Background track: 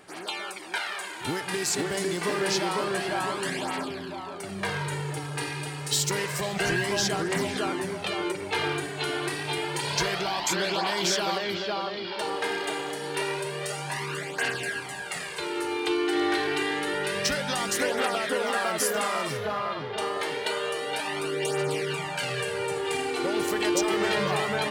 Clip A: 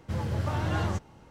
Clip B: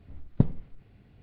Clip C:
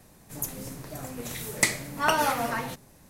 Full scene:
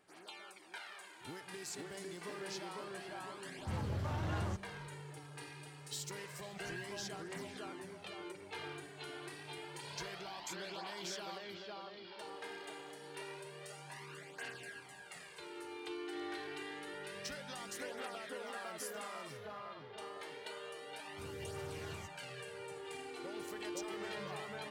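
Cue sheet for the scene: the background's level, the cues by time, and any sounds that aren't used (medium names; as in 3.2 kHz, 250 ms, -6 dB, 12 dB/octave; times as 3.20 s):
background track -18 dB
3.58 s: add A -6.5 dB + saturation -25 dBFS
21.09 s: add A -7.5 dB + pre-emphasis filter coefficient 0.8
not used: B, C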